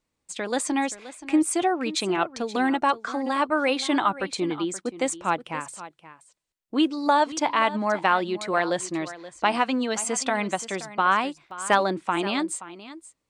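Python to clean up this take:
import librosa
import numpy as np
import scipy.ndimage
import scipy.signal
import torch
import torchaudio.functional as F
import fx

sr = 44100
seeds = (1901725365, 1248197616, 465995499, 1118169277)

y = fx.fix_declip(x, sr, threshold_db=-6.5)
y = fx.fix_interpolate(y, sr, at_s=(2.82, 11.51), length_ms=1.5)
y = fx.fix_echo_inverse(y, sr, delay_ms=526, level_db=-15.5)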